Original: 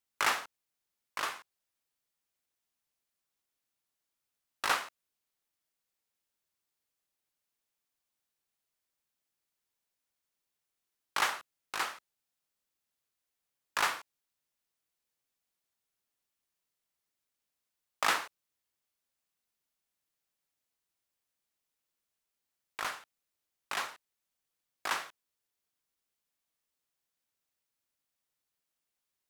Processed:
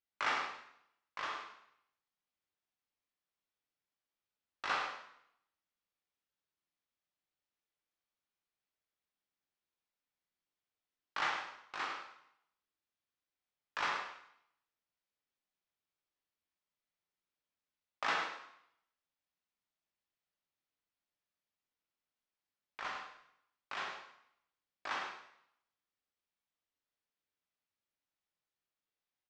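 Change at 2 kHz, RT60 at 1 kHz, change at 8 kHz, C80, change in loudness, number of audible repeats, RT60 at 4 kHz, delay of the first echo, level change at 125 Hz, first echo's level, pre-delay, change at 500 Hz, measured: -4.0 dB, 0.75 s, -14.5 dB, 5.5 dB, -5.0 dB, 1, 0.70 s, 0.103 s, -3.5 dB, -8.5 dB, 5 ms, -4.0 dB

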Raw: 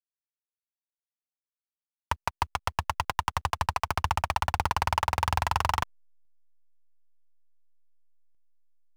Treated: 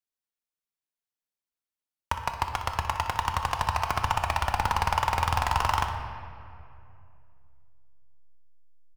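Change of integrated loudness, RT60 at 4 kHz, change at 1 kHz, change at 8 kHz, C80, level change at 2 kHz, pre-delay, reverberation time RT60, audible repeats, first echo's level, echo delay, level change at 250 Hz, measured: +1.5 dB, 1.5 s, +1.5 dB, +0.5 dB, 7.5 dB, +1.5 dB, 3 ms, 2.6 s, 1, -12.0 dB, 61 ms, +1.5 dB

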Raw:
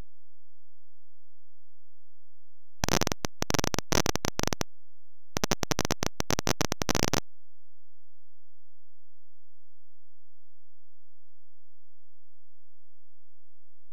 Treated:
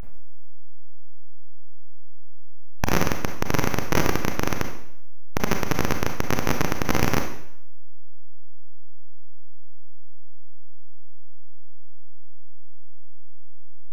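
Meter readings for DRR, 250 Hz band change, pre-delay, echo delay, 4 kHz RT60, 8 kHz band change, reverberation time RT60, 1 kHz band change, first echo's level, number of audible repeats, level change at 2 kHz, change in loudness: 4.5 dB, +6.0 dB, 29 ms, none, 0.65 s, -2.5 dB, 0.70 s, +5.5 dB, none, none, +6.0 dB, +3.5 dB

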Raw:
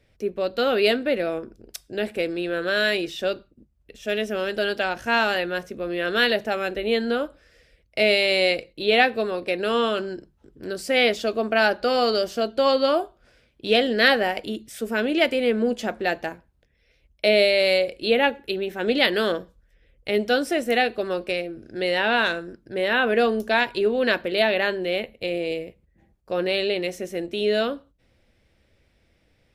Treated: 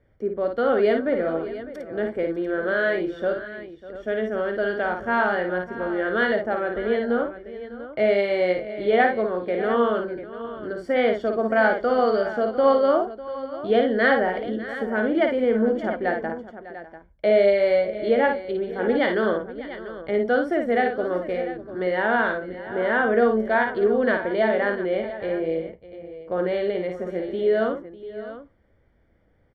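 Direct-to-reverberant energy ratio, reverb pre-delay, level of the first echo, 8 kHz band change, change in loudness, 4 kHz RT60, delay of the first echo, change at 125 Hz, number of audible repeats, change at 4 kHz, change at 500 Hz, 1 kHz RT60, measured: none, none, -5.5 dB, under -20 dB, -0.5 dB, none, 55 ms, n/a, 3, -14.0 dB, +1.5 dB, none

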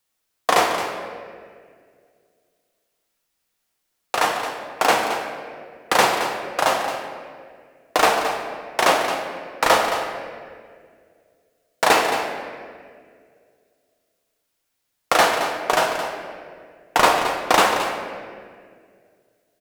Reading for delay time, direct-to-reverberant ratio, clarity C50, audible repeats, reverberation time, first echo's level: 0.22 s, 2.0 dB, 4.0 dB, 1, 2.1 s, -10.5 dB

